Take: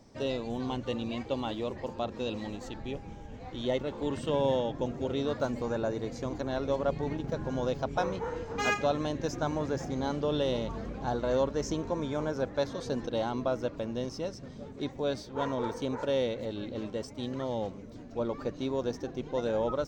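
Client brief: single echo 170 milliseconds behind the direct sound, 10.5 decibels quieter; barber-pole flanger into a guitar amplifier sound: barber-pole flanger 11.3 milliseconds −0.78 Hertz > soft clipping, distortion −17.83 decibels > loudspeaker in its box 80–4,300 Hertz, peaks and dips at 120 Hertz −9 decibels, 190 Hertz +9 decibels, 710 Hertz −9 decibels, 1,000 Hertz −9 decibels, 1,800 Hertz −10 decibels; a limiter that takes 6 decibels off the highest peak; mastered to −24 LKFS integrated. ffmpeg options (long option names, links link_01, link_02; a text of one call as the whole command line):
ffmpeg -i in.wav -filter_complex "[0:a]alimiter=limit=-21.5dB:level=0:latency=1,aecho=1:1:170:0.299,asplit=2[link_01][link_02];[link_02]adelay=11.3,afreqshift=-0.78[link_03];[link_01][link_03]amix=inputs=2:normalize=1,asoftclip=threshold=-28dB,highpass=80,equalizer=frequency=120:width_type=q:width=4:gain=-9,equalizer=frequency=190:width_type=q:width=4:gain=9,equalizer=frequency=710:width_type=q:width=4:gain=-9,equalizer=frequency=1000:width_type=q:width=4:gain=-9,equalizer=frequency=1800:width_type=q:width=4:gain=-10,lowpass=frequency=4300:width=0.5412,lowpass=frequency=4300:width=1.3066,volume=15dB" out.wav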